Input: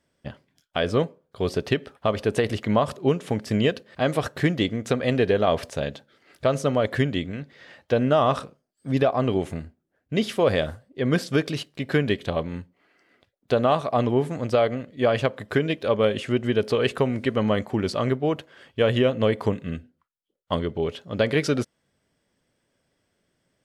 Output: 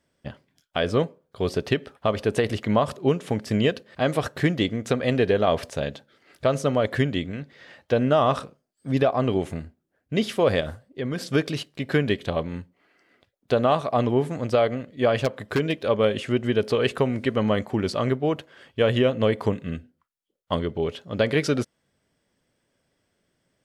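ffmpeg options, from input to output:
-filter_complex "[0:a]asettb=1/sr,asplit=3[s0][s1][s2];[s0]atrim=end=10.604[s3];[s1]atrim=start=10.6:end=11.22,asetpts=PTS-STARTPTS,afade=t=in:d=0.004:c=qsin,afade=t=out:st=0.616:d=0.004:c=qsin,acompressor=threshold=0.0631:ratio=5:attack=3.2:release=140:knee=1:detection=peak[s4];[s2]atrim=start=11.216[s5];[s3][s4]acrossfade=d=0.004:c1=hsin:c2=qsin[s6];[s6][s5]acrossfade=d=0.004:c1=qsin:c2=hsin,asettb=1/sr,asplit=3[s7][s8][s9];[s7]atrim=end=15.184[s10];[s8]atrim=start=15.18:end=15.79,asetpts=PTS-STARTPTS,afade=t=in:d=0.004:c=qsin,afade=t=out:st=0.606:d=0.004:c=qsin,aeval=exprs='0.2*(abs(mod(val(0)/0.2+3,4)-2)-1)':c=same[s11];[s9]atrim=start=15.786[s12];[s10][s11]acrossfade=d=0.004:c1=hsin:c2=qsin[s13];[s13][s12]acrossfade=d=0.004:c1=qsin:c2=hsin"

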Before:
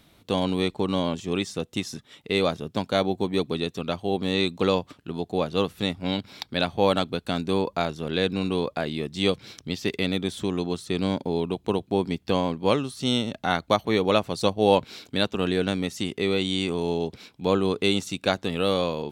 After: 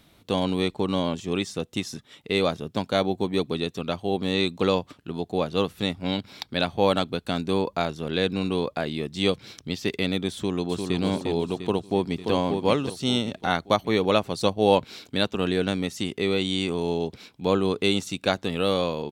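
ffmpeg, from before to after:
-filter_complex "[0:a]asplit=2[s0][s1];[s1]afade=t=in:st=10.34:d=0.01,afade=t=out:st=10.99:d=0.01,aecho=0:1:350|700|1050|1400|1750|2100:0.595662|0.297831|0.148916|0.0744578|0.0372289|0.0186144[s2];[s0][s2]amix=inputs=2:normalize=0,asplit=2[s3][s4];[s4]afade=t=in:st=11.59:d=0.01,afade=t=out:st=12.31:d=0.01,aecho=0:1:580|1160|1740|2320:0.562341|0.196819|0.0688868|0.0241104[s5];[s3][s5]amix=inputs=2:normalize=0"

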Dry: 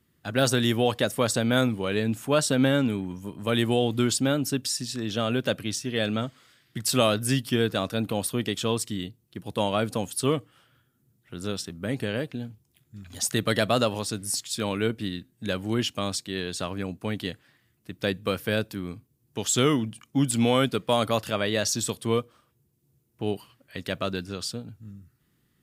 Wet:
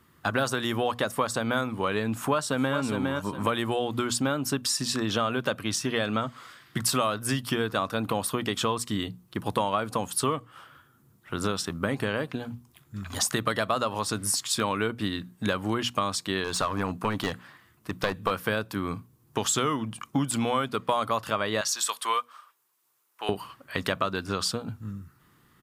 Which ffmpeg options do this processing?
-filter_complex "[0:a]asplit=2[s0][s1];[s1]afade=t=in:st=2.13:d=0.01,afade=t=out:st=2.78:d=0.01,aecho=0:1:410|820:0.354813|0.053222[s2];[s0][s2]amix=inputs=2:normalize=0,asettb=1/sr,asplit=3[s3][s4][s5];[s3]atrim=end=16.444[s6];[s4]atrim=start=16.44:end=18.31,asetpts=PTS-STARTPTS,afade=t=in:d=0.004:c=qsin,afade=t=out:st=1.866:d=0.004:c=qsin,aeval=exprs='clip(val(0),-1,0.0335)':c=same[s7];[s5]atrim=start=18.306[s8];[s6][s7]acrossfade=d=0.004:c1=hsin:c2=qsin[s9];[s9][s8]acrossfade=d=0.004:c1=qsin:c2=hsin,asettb=1/sr,asplit=3[s10][s11][s12];[s10]atrim=end=21.614[s13];[s11]atrim=start=21.61:end=23.29,asetpts=PTS-STARTPTS,afade=t=in:d=0.004:c=qsin,afade=t=out:st=1.676:d=0.004:c=qsin,highpass=1100[s14];[s12]atrim=start=23.286[s15];[s13][s14]acrossfade=d=0.004:c1=hsin:c2=qsin[s16];[s16][s15]acrossfade=d=0.004:c1=qsin:c2=hsin,equalizer=f=1100:w=1.4:g=12.5,acompressor=threshold=0.0316:ratio=6,bandreject=f=60:t=h:w=6,bandreject=f=120:t=h:w=6,bandreject=f=180:t=h:w=6,bandreject=f=240:t=h:w=6,volume=2.11"

